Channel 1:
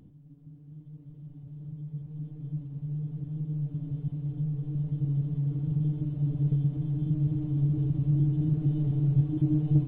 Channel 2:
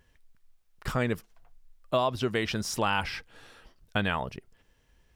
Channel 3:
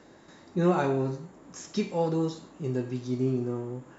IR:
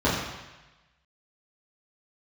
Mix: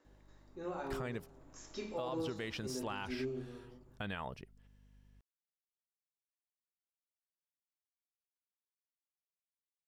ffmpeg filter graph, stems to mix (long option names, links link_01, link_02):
-filter_complex "[1:a]aeval=exprs='val(0)+0.00224*(sin(2*PI*50*n/s)+sin(2*PI*2*50*n/s)/2+sin(2*PI*3*50*n/s)/3+sin(2*PI*4*50*n/s)/4+sin(2*PI*5*50*n/s)/5)':channel_layout=same,adelay=50,volume=-9.5dB[link_01];[2:a]equalizer=frequency=170:width_type=o:width=0.94:gain=-13.5,volume=-11dB,afade=type=in:start_time=1.26:duration=0.46:silence=0.446684,afade=type=out:start_time=3.23:duration=0.24:silence=0.237137,asplit=2[link_02][link_03];[link_03]volume=-19.5dB[link_04];[3:a]atrim=start_sample=2205[link_05];[link_04][link_05]afir=irnorm=-1:irlink=0[link_06];[link_01][link_02][link_06]amix=inputs=3:normalize=0,alimiter=level_in=5.5dB:limit=-24dB:level=0:latency=1:release=105,volume=-5.5dB"